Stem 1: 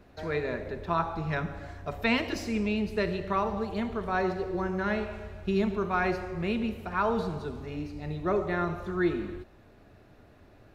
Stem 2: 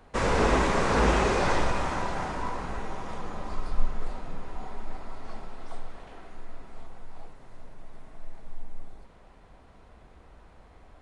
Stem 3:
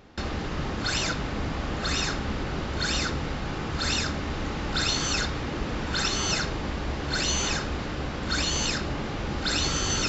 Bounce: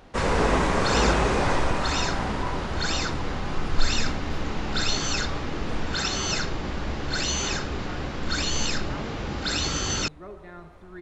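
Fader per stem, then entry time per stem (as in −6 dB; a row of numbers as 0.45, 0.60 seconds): −14.5, +1.0, −0.5 decibels; 1.95, 0.00, 0.00 seconds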